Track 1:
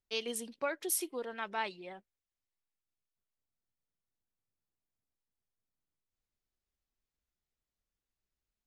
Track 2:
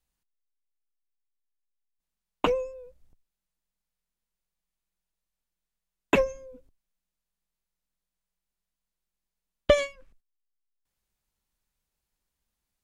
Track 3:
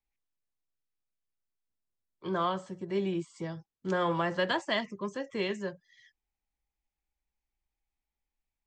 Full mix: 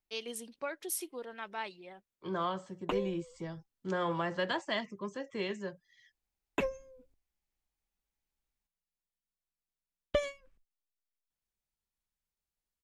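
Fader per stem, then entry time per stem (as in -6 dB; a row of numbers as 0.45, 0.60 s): -3.5, -10.5, -4.0 dB; 0.00, 0.45, 0.00 s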